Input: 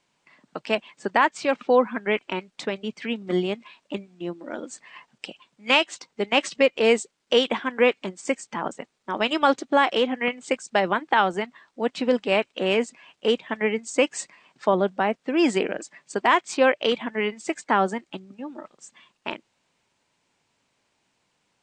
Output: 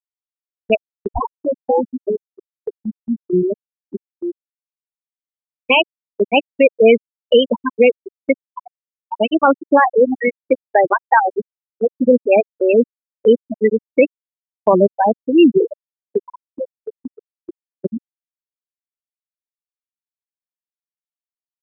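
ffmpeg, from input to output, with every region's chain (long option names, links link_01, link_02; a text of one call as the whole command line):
ffmpeg -i in.wav -filter_complex "[0:a]asettb=1/sr,asplit=3[link_01][link_02][link_03];[link_01]atrim=end=0.754[link_04];[link_02]atrim=start=0.75:end=3.44,asetpts=PTS-STARTPTS,afade=type=in:duration=0.004:curve=qsin,afade=type=out:start_time=2.686:duration=0.004:curve=qsin,highshelf=frequency=6300:gain=-9.5,acrossover=split=200|3000[link_05][link_06][link_07];[link_06]acompressor=threshold=-22dB:ratio=3:attack=3.2:release=140:knee=2.83:detection=peak[link_08];[link_05][link_08][link_07]amix=inputs=3:normalize=0,acrusher=samples=26:mix=1:aa=0.000001:lfo=1:lforange=15.6:lforate=1.3[link_09];[link_03]atrim=start=3.436[link_10];[link_04][link_09]acrossfade=duration=0.004:curve1=hsin:curve2=qsin[link_11];[link_11][link_10]acrossfade=duration=0.004:curve1=qsin:curve2=hsin,asettb=1/sr,asplit=3[link_12][link_13][link_14];[link_12]atrim=end=11.194[link_15];[link_13]atrim=start=11.19:end=11.88,asetpts=PTS-STARTPTS,afade=type=in:duration=0.004:curve=qsin,afade=type=out:start_time=0.686:duration=0.004:curve=qsin,highpass=72,bandreject=frequency=60:width_type=h:width=6,bandreject=frequency=120:width_type=h:width=6,bandreject=frequency=180:width_type=h:width=6,bandreject=frequency=240:width_type=h:width=6,bandreject=frequency=300:width_type=h:width=6,bandreject=frequency=360:width_type=h:width=6,bandreject=frequency=420:width_type=h:width=6,aeval=exprs='0.15*(abs(mod(val(0)/0.15+3,4)-2)-1)':channel_layout=same[link_16];[link_14]atrim=start=11.876[link_17];[link_15][link_16]acrossfade=duration=0.004:curve1=hsin:curve2=qsin[link_18];[link_18][link_17]acrossfade=duration=0.004:curve1=qsin:curve2=hsin,asettb=1/sr,asplit=3[link_19][link_20][link_21];[link_19]atrim=end=16.184[link_22];[link_20]atrim=start=16.18:end=17.85,asetpts=PTS-STARTPTS,afade=type=in:duration=0.004:curve=qsin,afade=type=out:start_time=1.666:duration=0.004:curve=qsin,bandreject=frequency=51.5:width_type=h:width=4,bandreject=frequency=103:width_type=h:width=4,bandreject=frequency=154.5:width_type=h:width=4,acompressor=threshold=-26dB:ratio=12:attack=3.2:release=140:knee=1:detection=peak[link_23];[link_21]atrim=start=17.846[link_24];[link_22][link_23]acrossfade=duration=0.004:curve1=hsin:curve2=qsin[link_25];[link_25][link_24]acrossfade=duration=0.004:curve1=qsin:curve2=hsin,afftfilt=real='re*gte(hypot(re,im),0.355)':imag='im*gte(hypot(re,im),0.355)':win_size=1024:overlap=0.75,agate=range=-13dB:threshold=-46dB:ratio=16:detection=peak,alimiter=level_in=12dB:limit=-1dB:release=50:level=0:latency=1,volume=-1dB" out.wav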